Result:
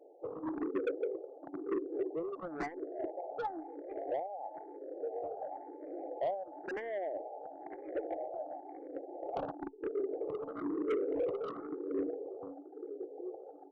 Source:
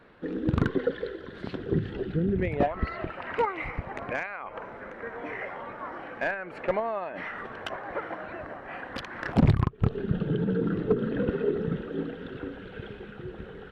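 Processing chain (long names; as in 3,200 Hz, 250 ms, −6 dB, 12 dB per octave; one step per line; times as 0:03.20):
brick-wall band-pass 270–880 Hz
soft clipping −30 dBFS, distortion −8 dB
frequency shifter mixed with the dry sound +0.99 Hz
level +2.5 dB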